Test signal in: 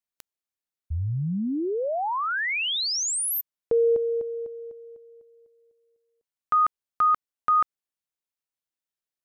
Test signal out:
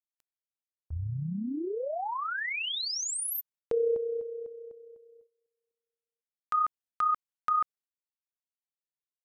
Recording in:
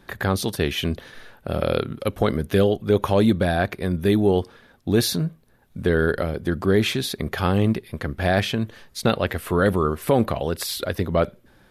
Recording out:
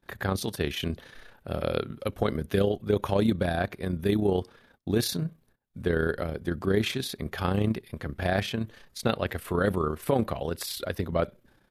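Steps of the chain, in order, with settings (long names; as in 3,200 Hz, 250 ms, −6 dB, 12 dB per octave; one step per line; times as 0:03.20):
noise gate −53 dBFS, range −19 dB
amplitude modulation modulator 31 Hz, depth 35%
level −4 dB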